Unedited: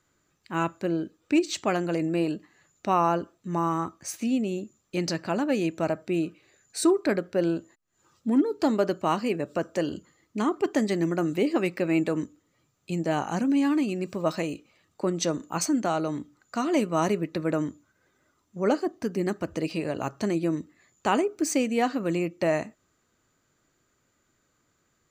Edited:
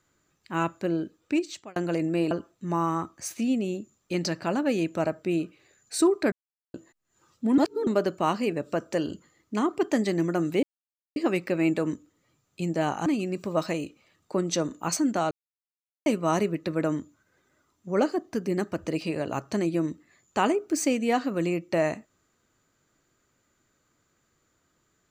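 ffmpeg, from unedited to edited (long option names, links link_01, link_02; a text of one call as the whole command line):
ffmpeg -i in.wav -filter_complex "[0:a]asplit=11[link_01][link_02][link_03][link_04][link_05][link_06][link_07][link_08][link_09][link_10][link_11];[link_01]atrim=end=1.76,asetpts=PTS-STARTPTS,afade=type=out:start_time=1.18:duration=0.58[link_12];[link_02]atrim=start=1.76:end=2.312,asetpts=PTS-STARTPTS,afade=type=in:duration=0.004:curve=hsin[link_13];[link_03]atrim=start=3.138:end=7.15,asetpts=PTS-STARTPTS,afade=type=out:start_time=4.008:duration=0.004:curve=hsin[link_14];[link_04]atrim=start=7.15:end=7.57,asetpts=PTS-STARTPTS,volume=0[link_15];[link_05]atrim=start=7.57:end=8.412,asetpts=PTS-STARTPTS,afade=type=in:duration=0.004:curve=hsin[link_16];[link_06]atrim=start=8.408:end=8.702,asetpts=PTS-STARTPTS,areverse[link_17];[link_07]atrim=start=8.698:end=11.46,asetpts=PTS-STARTPTS,afade=type=out:start_time=2.758:duration=0.004:curve=hsin,apad=pad_dur=0.53[link_18];[link_08]atrim=start=11.46:end=13.362,asetpts=PTS-STARTPTS,afade=type=in:duration=0.004:curve=hsin[link_19];[link_09]atrim=start=13.748:end=16,asetpts=PTS-STARTPTS,afade=type=out:start_time=2.248:duration=0.004:curve=hsin[link_20];[link_10]atrim=start=16:end=16.75,asetpts=PTS-STARTPTS,volume=0[link_21];[link_11]atrim=start=16.75,asetpts=PTS-STARTPTS,afade=type=in:duration=0.004:curve=hsin[link_22];[link_12][link_13]concat=n=2:v=0:a=1[link_23];[link_14][link_15][link_16]concat=n=3:v=0:a=1[link_24];[link_23][link_24]acrossfade=duration=0.004:curve1=hsin:curve2=hsin[link_25];[link_25][link_17]acrossfade=duration=0.004:curve1=hsin:curve2=hsin[link_26];[link_18][link_19]concat=n=2:v=0:a=1[link_27];[link_26][link_27]acrossfade=duration=0.004:curve1=hsin:curve2=hsin[link_28];[link_20][link_21][link_22]concat=n=3:v=0:a=1[link_29];[link_28][link_29]acrossfade=duration=0.004:curve1=hsin:curve2=hsin" out.wav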